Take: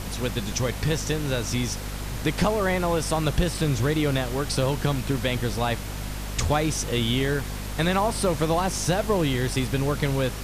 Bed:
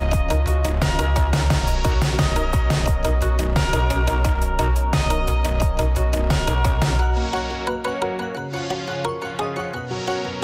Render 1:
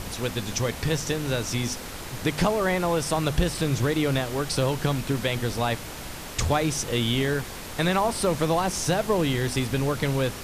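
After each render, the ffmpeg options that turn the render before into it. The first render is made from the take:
-af "bandreject=f=50:t=h:w=4,bandreject=f=100:t=h:w=4,bandreject=f=150:t=h:w=4,bandreject=f=200:t=h:w=4,bandreject=f=250:t=h:w=4"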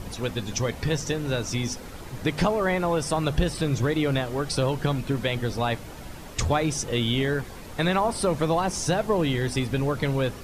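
-af "afftdn=nr=9:nf=-37"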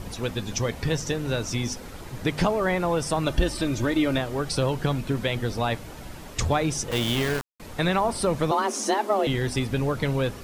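-filter_complex "[0:a]asettb=1/sr,asplit=3[s0][s1][s2];[s0]atrim=end=3.264[s3];[s1]atrim=start=3.26:end=4.18,asetpts=PTS-STARTPTS,afade=t=in:d=0.004:c=qsin,afade=t=out:st=0.916:d=0.004:c=qsin,aecho=1:1:3.3:0.56,atrim=end_sample=40572[s4];[s2]atrim=start=4.176[s5];[s3][s4]acrossfade=d=0.004:c1=hsin:c2=qsin[s6];[s6][s5]acrossfade=d=0.004:c1=qsin:c2=hsin,asettb=1/sr,asplit=3[s7][s8][s9];[s7]atrim=end=6.914[s10];[s8]atrim=start=6.91:end=7.6,asetpts=PTS-STARTPTS,afade=t=in:d=0.004:c=qsin,afade=t=out:st=0.686:d=0.004:c=qsin,aeval=exprs='val(0)*gte(abs(val(0)),0.0501)':c=same[s11];[s9]atrim=start=7.596[s12];[s10][s11]acrossfade=d=0.004:c1=hsin:c2=qsin[s13];[s13][s12]acrossfade=d=0.004:c1=qsin:c2=hsin,asettb=1/sr,asplit=3[s14][s15][s16];[s14]atrim=end=8.514[s17];[s15]atrim=start=8.51:end=9.27,asetpts=PTS-STARTPTS,afade=t=in:d=0.004:c=qsin,afade=t=out:st=0.756:d=0.004:c=qsin,afreqshift=200[s18];[s16]atrim=start=9.266[s19];[s17][s18]acrossfade=d=0.004:c1=hsin:c2=qsin[s20];[s20][s19]acrossfade=d=0.004:c1=qsin:c2=hsin"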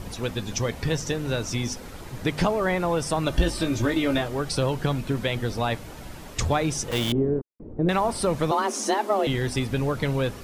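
-filter_complex "[0:a]asettb=1/sr,asplit=3[s0][s1][s2];[s0]atrim=end=3.314[s3];[s1]atrim=start=3.31:end=4.28,asetpts=PTS-STARTPTS,afade=t=in:d=0.004:c=qsin,afade=t=out:st=0.966:d=0.004:c=qsin,asplit=2[s4][s5];[s5]adelay=18,volume=0.501[s6];[s4][s6]amix=inputs=2:normalize=0,atrim=end_sample=42777[s7];[s2]atrim=start=4.276[s8];[s3][s7]acrossfade=d=0.004:c1=hsin:c2=qsin[s9];[s9][s8]acrossfade=d=0.004:c1=qsin:c2=hsin,asettb=1/sr,asplit=3[s10][s11][s12];[s10]atrim=end=7.124[s13];[s11]atrim=start=7.12:end=7.89,asetpts=PTS-STARTPTS,afade=t=in:d=0.004:c=qsin,afade=t=out:st=0.766:d=0.004:c=qsin,lowpass=f=370:t=q:w=2[s14];[s12]atrim=start=7.886[s15];[s13][s14]acrossfade=d=0.004:c1=hsin:c2=qsin[s16];[s16][s15]acrossfade=d=0.004:c1=qsin:c2=hsin"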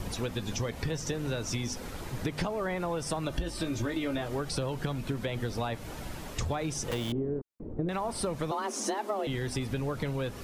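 -filter_complex "[0:a]acrossover=split=760|1100[s0][s1][s2];[s2]alimiter=limit=0.075:level=0:latency=1:release=43[s3];[s0][s1][s3]amix=inputs=3:normalize=0,acompressor=threshold=0.0355:ratio=6"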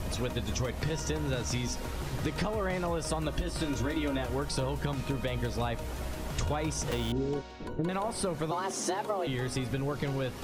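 -filter_complex "[1:a]volume=0.0944[s0];[0:a][s0]amix=inputs=2:normalize=0"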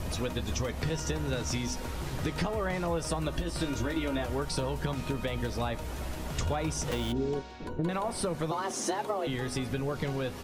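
-filter_complex "[0:a]asplit=2[s0][s1];[s1]adelay=12,volume=0.266[s2];[s0][s2]amix=inputs=2:normalize=0,asplit=2[s3][s4];[s4]adelay=134.1,volume=0.0447,highshelf=f=4000:g=-3.02[s5];[s3][s5]amix=inputs=2:normalize=0"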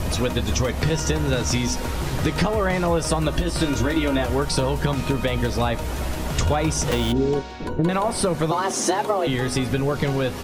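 -af "volume=3.16"

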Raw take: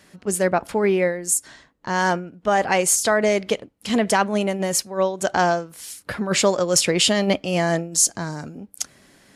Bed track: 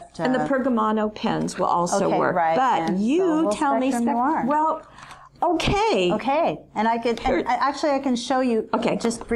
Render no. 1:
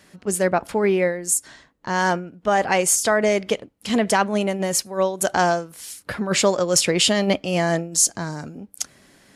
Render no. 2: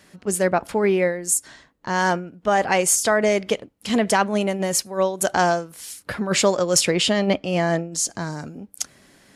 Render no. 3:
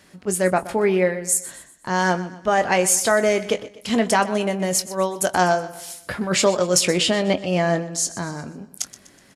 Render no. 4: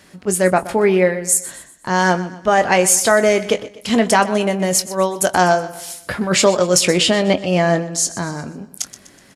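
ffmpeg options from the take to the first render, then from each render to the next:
-filter_complex "[0:a]asettb=1/sr,asplit=3[s0][s1][s2];[s0]atrim=end=2.854[s3];[s1]atrim=start=2.85:end=3.55,asetpts=PTS-STARTPTS,afade=t=in:d=0.004:c=qsin,afade=t=out:st=0.696:d=0.004:c=qsin,bandreject=f=4100:w=12[s4];[s2]atrim=start=3.546[s5];[s3][s4]acrossfade=d=0.004:c1=hsin:c2=qsin[s6];[s6][s5]acrossfade=d=0.004:c1=qsin:c2=hsin,asettb=1/sr,asplit=3[s7][s8][s9];[s7]atrim=end=4.854[s10];[s8]atrim=start=4.85:end=5.72,asetpts=PTS-STARTPTS,afade=t=in:d=0.004:c=qsin,afade=t=out:st=0.866:d=0.004:c=qsin,equalizer=f=11000:w=1.4:g=13.5[s11];[s9]atrim=start=5.716[s12];[s10][s11]acrossfade=d=0.004:c1=hsin:c2=qsin[s13];[s13][s12]acrossfade=d=0.004:c1=qsin:c2=hsin"
-filter_complex "[0:a]asettb=1/sr,asplit=3[s0][s1][s2];[s0]atrim=end=6.954[s3];[s1]atrim=start=6.95:end=8.1,asetpts=PTS-STARTPTS,afade=t=in:d=0.004:c=qsin,afade=t=out:st=1.146:d=0.004:c=qsin,lowpass=f=3800:p=1[s4];[s2]atrim=start=8.096[s5];[s3][s4]acrossfade=d=0.004:c1=hsin:c2=qsin[s6];[s6][s5]acrossfade=d=0.004:c1=qsin:c2=hsin"
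-filter_complex "[0:a]asplit=2[s0][s1];[s1]adelay=22,volume=0.282[s2];[s0][s2]amix=inputs=2:normalize=0,aecho=1:1:124|248|372|496:0.158|0.0682|0.0293|0.0126"
-af "volume=1.68,alimiter=limit=0.794:level=0:latency=1"

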